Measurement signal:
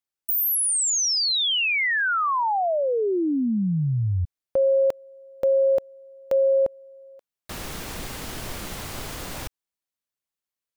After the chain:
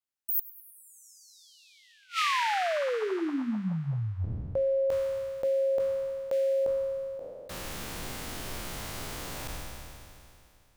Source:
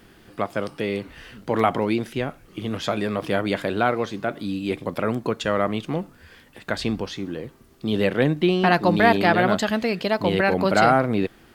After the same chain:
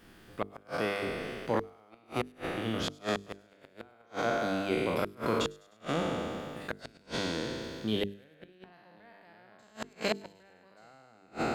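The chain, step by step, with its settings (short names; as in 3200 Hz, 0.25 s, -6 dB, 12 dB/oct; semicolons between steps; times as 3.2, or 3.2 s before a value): spectral trails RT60 2.61 s; flipped gate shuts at -8 dBFS, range -35 dB; notches 50/100/150/200/250/300/350/400/450 Hz; on a send: thin delay 0.102 s, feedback 59%, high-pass 5200 Hz, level -19 dB; on the sum: gain -7.5 dB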